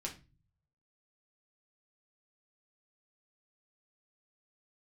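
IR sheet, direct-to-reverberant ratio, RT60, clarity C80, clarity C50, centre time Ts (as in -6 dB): -1.0 dB, 0.30 s, 18.5 dB, 12.0 dB, 15 ms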